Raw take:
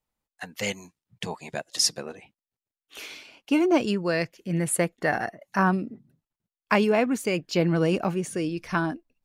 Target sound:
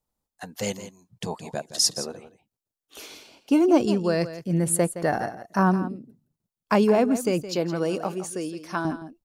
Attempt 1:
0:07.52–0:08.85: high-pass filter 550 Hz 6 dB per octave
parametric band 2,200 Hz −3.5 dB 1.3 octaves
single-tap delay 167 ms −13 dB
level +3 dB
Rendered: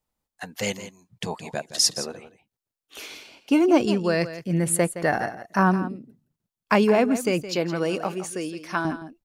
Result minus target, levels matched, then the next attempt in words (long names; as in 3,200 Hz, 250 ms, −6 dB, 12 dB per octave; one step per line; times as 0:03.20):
2,000 Hz band +4.5 dB
0:07.52–0:08.85: high-pass filter 550 Hz 6 dB per octave
parametric band 2,200 Hz −10.5 dB 1.3 octaves
single-tap delay 167 ms −13 dB
level +3 dB